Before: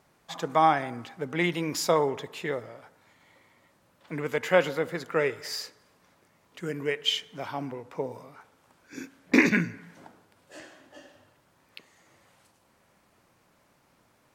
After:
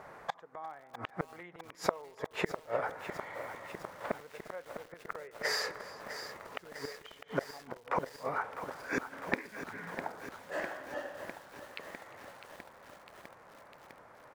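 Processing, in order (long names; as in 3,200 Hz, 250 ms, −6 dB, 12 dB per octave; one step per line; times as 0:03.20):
in parallel at −1 dB: downward compressor 8 to 1, threshold −39 dBFS, peak gain reduction 24 dB
on the sum: flat-topped bell 940 Hz +10.5 dB 2.6 octaves
speech leveller within 3 dB 0.5 s
gate with flip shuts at −16 dBFS, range −31 dB
high-shelf EQ 3,500 Hz −7.5 dB
on a send: single-tap delay 351 ms −20.5 dB
on the sum: feedback echo at a low word length 653 ms, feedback 80%, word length 8 bits, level −10 dB
level −1 dB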